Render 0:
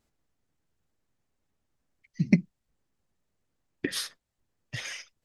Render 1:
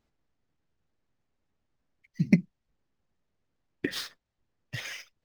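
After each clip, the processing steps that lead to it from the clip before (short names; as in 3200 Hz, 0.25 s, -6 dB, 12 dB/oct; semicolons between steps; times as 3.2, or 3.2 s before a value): median filter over 5 samples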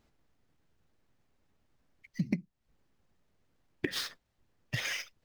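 compressor 5:1, threshold -36 dBFS, peak gain reduction 19.5 dB; gain +6 dB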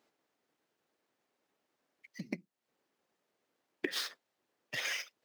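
Chebyshev high-pass 390 Hz, order 2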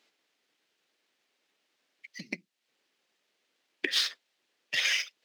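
weighting filter D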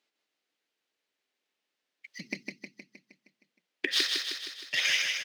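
gate -58 dBFS, range -10 dB; on a send: feedback echo 0.156 s, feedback 58%, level -4 dB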